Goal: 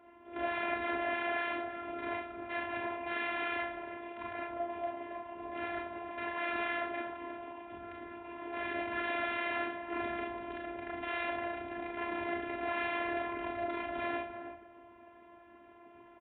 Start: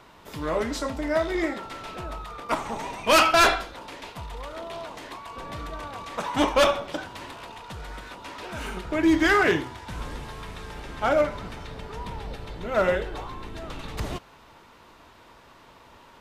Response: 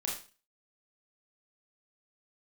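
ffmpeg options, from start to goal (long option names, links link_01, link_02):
-filter_complex "[0:a]equalizer=frequency=1600:width=0.38:gain=-11.5,aresample=8000,aeval=exprs='(mod(39.8*val(0)+1,2)-1)/39.8':channel_layout=same,aresample=44100,asplit=2[link_01][link_02];[link_02]adelay=314,lowpass=frequency=980:poles=1,volume=-7dB,asplit=2[link_03][link_04];[link_04]adelay=314,lowpass=frequency=980:poles=1,volume=0.24,asplit=2[link_05][link_06];[link_06]adelay=314,lowpass=frequency=980:poles=1,volume=0.24[link_07];[link_01][link_03][link_05][link_07]amix=inputs=4:normalize=0[link_08];[1:a]atrim=start_sample=2205[link_09];[link_08][link_09]afir=irnorm=-1:irlink=0,afftfilt=real='hypot(re,im)*cos(PI*b)':imag='0':win_size=512:overlap=0.75,highpass=140,equalizer=frequency=150:width_type=q:width=4:gain=-9,equalizer=frequency=330:width_type=q:width=4:gain=-5,equalizer=frequency=1200:width_type=q:width=4:gain=-9,lowpass=frequency=2200:width=0.5412,lowpass=frequency=2200:width=1.3066,volume=6.5dB"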